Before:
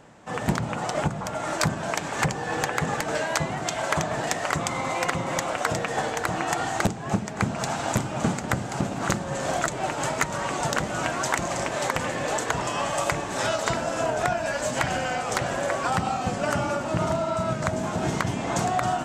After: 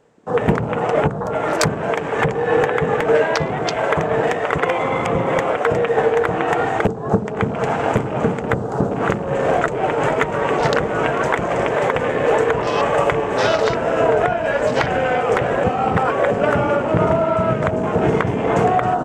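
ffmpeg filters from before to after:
ffmpeg -i in.wav -filter_complex "[0:a]asplit=3[link_01][link_02][link_03];[link_01]afade=type=out:start_time=10.01:duration=0.02[link_04];[link_02]aecho=1:1:444:0.299,afade=type=in:start_time=10.01:duration=0.02,afade=type=out:start_time=14.15:duration=0.02[link_05];[link_03]afade=type=in:start_time=14.15:duration=0.02[link_06];[link_04][link_05][link_06]amix=inputs=3:normalize=0,asplit=5[link_07][link_08][link_09][link_10][link_11];[link_07]atrim=end=4.582[link_12];[link_08]atrim=start=4.578:end=5.152,asetpts=PTS-STARTPTS,areverse[link_13];[link_09]atrim=start=5.148:end=15.642[link_14];[link_10]atrim=start=15.638:end=16.312,asetpts=PTS-STARTPTS,areverse[link_15];[link_11]atrim=start=16.308[link_16];[link_12][link_13]acrossfade=duration=0.004:curve1=hsin:curve2=hsin[link_17];[link_17][link_14]acrossfade=duration=0.004:curve1=hsin:curve2=hsin[link_18];[link_18][link_15]acrossfade=duration=0.004:curve1=hsin:curve2=hsin[link_19];[link_19][link_16]acrossfade=duration=0.004:curve1=hsin:curve2=hsin,afwtdn=0.0158,equalizer=frequency=450:width_type=o:width=0.32:gain=14,alimiter=limit=-12.5dB:level=0:latency=1:release=311,volume=7.5dB" out.wav

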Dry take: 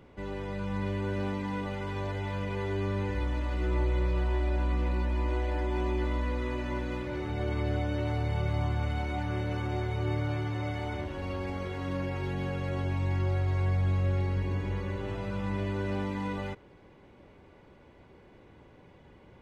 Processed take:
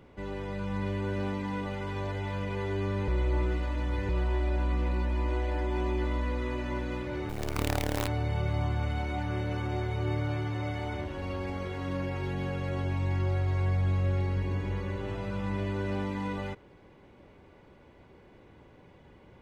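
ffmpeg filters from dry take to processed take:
ffmpeg -i in.wav -filter_complex "[0:a]asettb=1/sr,asplit=3[link_01][link_02][link_03];[link_01]atrim=end=7.294[link_04];[link_02]atrim=start=7.29:end=8.08,asetpts=PTS-STARTPTS,afade=type=in:duration=0.004:curve=qsin,afade=type=out:start_time=0.786:duration=0.004:curve=qsin,acrusher=bits=5:dc=4:mix=0:aa=0.000001[link_05];[link_03]atrim=start=8.076[link_06];[link_04][link_05]acrossfade=duration=0.004:curve1=hsin:curve2=qsin[link_07];[link_07][link_06]acrossfade=duration=0.004:curve1=qsin:curve2=hsin,asplit=3[link_08][link_09][link_10];[link_08]atrim=end=3.082[link_11];[link_09]atrim=start=3.078:end=4.092,asetpts=PTS-STARTPTS,areverse[link_12];[link_10]atrim=start=4.088[link_13];[link_11][link_12]acrossfade=duration=0.004:curve1=hsin:curve2=hsin[link_14];[link_14][link_13]acrossfade=duration=0.004:curve1=hsin:curve2=hsin" out.wav

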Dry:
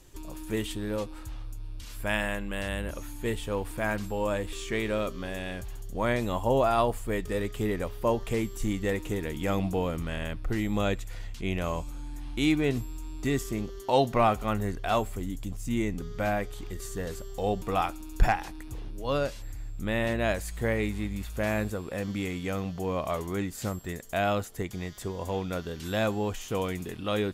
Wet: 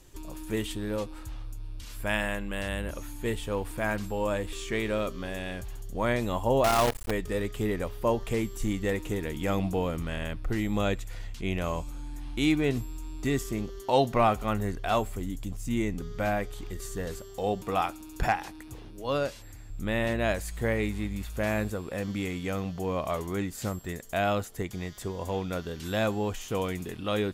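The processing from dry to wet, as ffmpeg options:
ffmpeg -i in.wav -filter_complex "[0:a]asettb=1/sr,asplit=3[link_01][link_02][link_03];[link_01]atrim=end=6.644[link_04];[link_02]atrim=start=6.64:end=7.11,asetpts=PTS-STARTPTS,afade=type=in:duration=0.004:curve=qsin,afade=type=out:start_time=0.466:duration=0.004:curve=qsin,acrusher=bits=5:dc=4:mix=0:aa=0.000001[link_05];[link_03]atrim=start=7.106[link_06];[link_04][link_05]acrossfade=duration=0.004:curve1=hsin:curve2=qsin[link_07];[link_07][link_06]acrossfade=duration=0.004:curve1=qsin:curve2=hsin,asettb=1/sr,asplit=3[link_08][link_09][link_10];[link_08]atrim=end=17.184[link_11];[link_09]atrim=start=17.18:end=19.7,asetpts=PTS-STARTPTS,afade=type=in:duration=0.004:curve=qsin,afade=type=out:start_time=2.516:duration=0.004:curve=qsin,highpass=frequency=110:poles=1[link_12];[link_10]atrim=start=19.696[link_13];[link_11][link_12]acrossfade=duration=0.004:curve1=hsin:curve2=qsin[link_14];[link_14][link_13]acrossfade=duration=0.004:curve1=qsin:curve2=hsin" out.wav

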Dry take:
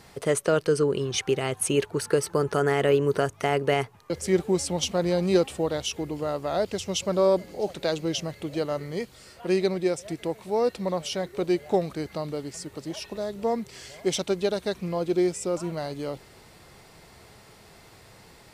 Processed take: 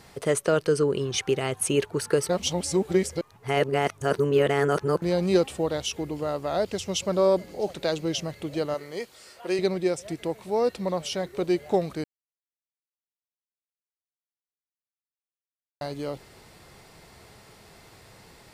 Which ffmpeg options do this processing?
ffmpeg -i in.wav -filter_complex "[0:a]asettb=1/sr,asplit=3[link_01][link_02][link_03];[link_01]atrim=end=8.744[link_04];[link_02]atrim=start=8.74:end=9.59,asetpts=PTS-STARTPTS,afade=type=in:duration=0.004:curve=qsin,afade=type=out:start_time=0.846:duration=0.004:curve=qsin,bass=frequency=250:gain=-14,treble=frequency=4000:gain=1[link_05];[link_03]atrim=start=9.586[link_06];[link_04][link_05]acrossfade=duration=0.004:curve1=hsin:curve2=qsin[link_07];[link_07][link_06]acrossfade=duration=0.004:curve1=qsin:curve2=hsin,asplit=5[link_08][link_09][link_10][link_11][link_12];[link_08]atrim=end=2.292[link_13];[link_09]atrim=start=2.288:end=5.022,asetpts=PTS-STARTPTS,areverse[link_14];[link_10]atrim=start=5.018:end=12.04,asetpts=PTS-STARTPTS,afade=type=out:start_time=7.018:duration=0.004:curve=hsin[link_15];[link_11]atrim=start=12.04:end=15.81,asetpts=PTS-STARTPTS,volume=0[link_16];[link_12]atrim=start=15.81,asetpts=PTS-STARTPTS,afade=type=in:duration=0.004:curve=hsin[link_17];[link_13][link_14]acrossfade=duration=0.004:curve1=hsin:curve2=hsin[link_18];[link_15][link_16][link_17]concat=n=3:v=0:a=1[link_19];[link_18][link_19]acrossfade=duration=0.004:curve1=hsin:curve2=hsin" out.wav

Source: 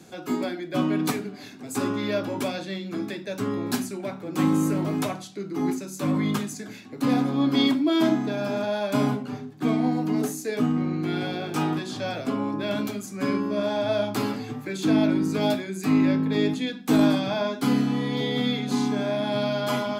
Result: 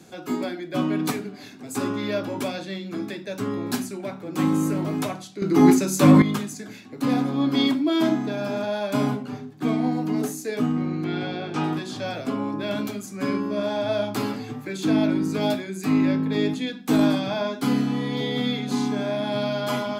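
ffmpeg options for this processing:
ffmpeg -i in.wav -filter_complex "[0:a]asettb=1/sr,asplit=3[link_01][link_02][link_03];[link_01]atrim=end=11.044[link_04];[link_02]atrim=start=11.04:end=11.64,asetpts=PTS-STARTPTS,afade=type=in:duration=0.004:curve=qsin,afade=type=out:start_time=0.596:duration=0.004:curve=qsin,lowpass=5000[link_05];[link_03]atrim=start=11.636[link_06];[link_04][link_05]acrossfade=duration=0.004:curve1=hsin:curve2=qsin[link_07];[link_07][link_06]acrossfade=duration=0.004:curve1=qsin:curve2=hsin,asplit=3[link_08][link_09][link_10];[link_08]atrim=end=5.422[link_11];[link_09]atrim=start=5.418:end=6.222,asetpts=PTS-STARTPTS,volume=11.5dB[link_12];[link_10]atrim=start=6.218[link_13];[link_11][link_12]acrossfade=duration=0.004:curve1=hsin:curve2=hsin[link_14];[link_14][link_13]acrossfade=duration=0.004:curve1=hsin:curve2=hsin" out.wav

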